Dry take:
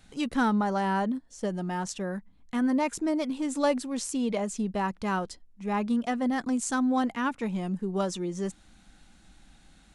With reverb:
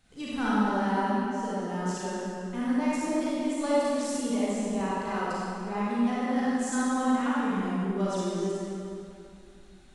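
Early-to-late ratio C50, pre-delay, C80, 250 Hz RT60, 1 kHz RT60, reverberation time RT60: -6.0 dB, 32 ms, -3.0 dB, 2.7 s, 2.6 s, 2.6 s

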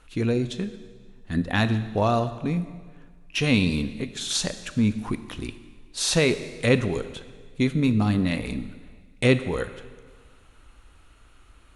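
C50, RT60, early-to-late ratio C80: 12.5 dB, 1.6 s, 13.5 dB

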